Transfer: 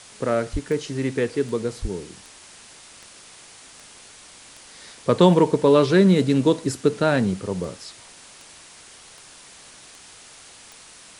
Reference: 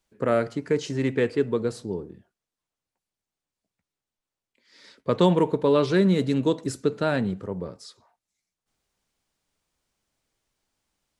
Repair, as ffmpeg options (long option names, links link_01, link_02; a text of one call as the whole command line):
ffmpeg -i in.wav -filter_complex "[0:a]adeclick=threshold=4,asplit=3[link_01][link_02][link_03];[link_01]afade=type=out:start_time=0.52:duration=0.02[link_04];[link_02]highpass=frequency=140:width=0.5412,highpass=frequency=140:width=1.3066,afade=type=in:start_time=0.52:duration=0.02,afade=type=out:start_time=0.64:duration=0.02[link_05];[link_03]afade=type=in:start_time=0.64:duration=0.02[link_06];[link_04][link_05][link_06]amix=inputs=3:normalize=0,asplit=3[link_07][link_08][link_09];[link_07]afade=type=out:start_time=1.81:duration=0.02[link_10];[link_08]highpass=frequency=140:width=0.5412,highpass=frequency=140:width=1.3066,afade=type=in:start_time=1.81:duration=0.02,afade=type=out:start_time=1.93:duration=0.02[link_11];[link_09]afade=type=in:start_time=1.93:duration=0.02[link_12];[link_10][link_11][link_12]amix=inputs=3:normalize=0,afwtdn=0.0071,asetnsamples=nb_out_samples=441:pad=0,asendcmd='2.61 volume volume -4.5dB',volume=0dB" out.wav